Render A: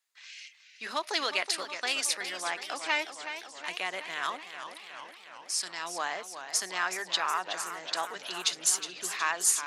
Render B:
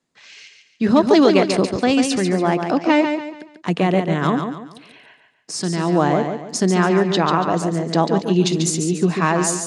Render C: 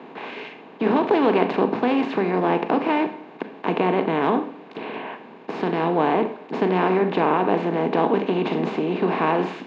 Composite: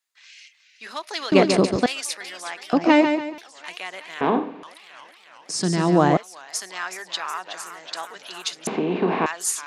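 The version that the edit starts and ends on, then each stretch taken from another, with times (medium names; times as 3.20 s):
A
1.32–1.86 s: from B
2.73–3.38 s: from B
4.21–4.63 s: from C
5.49–6.17 s: from B
8.67–9.26 s: from C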